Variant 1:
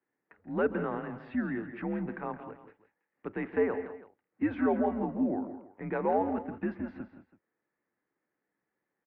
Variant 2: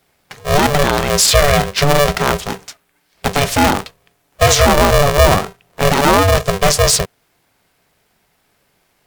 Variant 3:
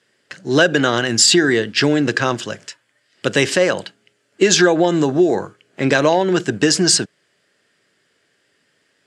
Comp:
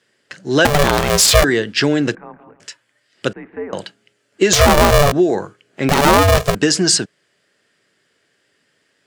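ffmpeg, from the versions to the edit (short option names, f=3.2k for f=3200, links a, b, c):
-filter_complex "[1:a]asplit=3[a][b][c];[0:a]asplit=2[d][e];[2:a]asplit=6[f][g][h][i][j][k];[f]atrim=end=0.652[l];[a]atrim=start=0.648:end=1.442[m];[g]atrim=start=1.438:end=2.152[n];[d]atrim=start=2.148:end=2.602[o];[h]atrim=start=2.598:end=3.332[p];[e]atrim=start=3.328:end=3.732[q];[i]atrim=start=3.728:end=4.532[r];[b]atrim=start=4.528:end=5.122[s];[j]atrim=start=5.118:end=5.892[t];[c]atrim=start=5.888:end=6.552[u];[k]atrim=start=6.548[v];[l][m]acrossfade=d=0.004:c1=hsin:c2=hsin[w];[w][n]acrossfade=d=0.004:c1=hsin:c2=hsin[x];[x][o]acrossfade=d=0.004:c1=hsin:c2=hsin[y];[y][p]acrossfade=d=0.004:c1=hsin:c2=hsin[z];[z][q]acrossfade=d=0.004:c1=hsin:c2=hsin[aa];[aa][r]acrossfade=d=0.004:c1=hsin:c2=hsin[ab];[ab][s]acrossfade=d=0.004:c1=hsin:c2=hsin[ac];[ac][t]acrossfade=d=0.004:c1=hsin:c2=hsin[ad];[ad][u]acrossfade=d=0.004:c1=hsin:c2=hsin[ae];[ae][v]acrossfade=d=0.004:c1=hsin:c2=hsin"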